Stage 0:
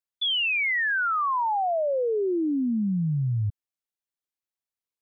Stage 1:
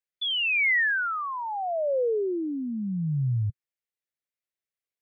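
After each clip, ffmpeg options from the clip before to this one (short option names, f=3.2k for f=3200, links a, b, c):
-af "equalizer=f=125:t=o:w=1:g=6,equalizer=f=250:t=o:w=1:g=-3,equalizer=f=500:t=o:w=1:g=7,equalizer=f=1k:t=o:w=1:g=-5,equalizer=f=2k:t=o:w=1:g=9,volume=-5.5dB"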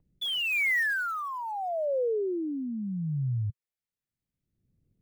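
-filter_complex "[0:a]acrossover=split=230|1300[a][b][c];[a]acompressor=mode=upward:threshold=-32dB:ratio=2.5[d];[c]acrusher=bits=4:mode=log:mix=0:aa=0.000001[e];[d][b][e]amix=inputs=3:normalize=0,volume=-3.5dB"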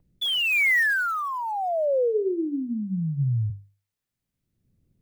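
-af "bandreject=f=50:t=h:w=6,bandreject=f=100:t=h:w=6,bandreject=f=150:t=h:w=6,bandreject=f=200:t=h:w=6,bandreject=f=250:t=h:w=6,bandreject=f=300:t=h:w=6,bandreject=f=350:t=h:w=6,bandreject=f=400:t=h:w=6,bandreject=f=450:t=h:w=6,volume=5.5dB"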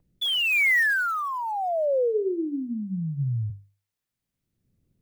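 -af "lowshelf=f=230:g=-3.5"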